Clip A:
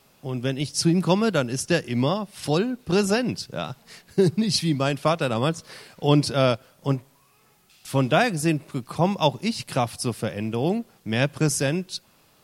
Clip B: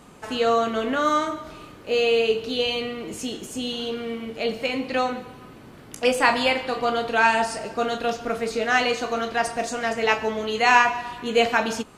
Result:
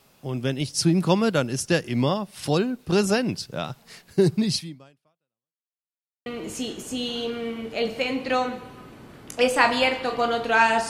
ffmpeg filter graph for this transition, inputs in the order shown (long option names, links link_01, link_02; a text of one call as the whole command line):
ffmpeg -i cue0.wav -i cue1.wav -filter_complex "[0:a]apad=whole_dur=10.89,atrim=end=10.89,asplit=2[link_01][link_02];[link_01]atrim=end=5.74,asetpts=PTS-STARTPTS,afade=type=out:start_time=4.51:duration=1.23:curve=exp[link_03];[link_02]atrim=start=5.74:end=6.26,asetpts=PTS-STARTPTS,volume=0[link_04];[1:a]atrim=start=2.9:end=7.53,asetpts=PTS-STARTPTS,afade=type=in:duration=0.004:curve=hsin[link_05];[link_03][link_04][link_05]concat=n=3:v=0:a=1" out.wav